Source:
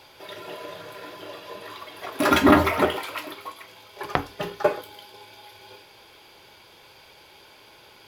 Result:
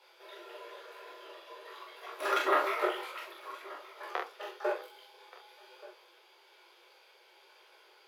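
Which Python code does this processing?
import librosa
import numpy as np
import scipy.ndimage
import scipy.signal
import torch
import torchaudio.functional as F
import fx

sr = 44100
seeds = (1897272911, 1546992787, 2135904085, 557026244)

y = scipy.signal.sosfilt(scipy.signal.cheby1(6, 3, 350.0, 'highpass', fs=sr, output='sos'), x)
y = fx.high_shelf(y, sr, hz=7700.0, db=-4.0)
y = fx.doubler(y, sr, ms=43.0, db=-2.5)
y = y + 10.0 ** (-19.5 / 20.0) * np.pad(y, (int(1178 * sr / 1000.0), 0))[:len(y)]
y = fx.detune_double(y, sr, cents=36)
y = y * 10.0 ** (-6.0 / 20.0)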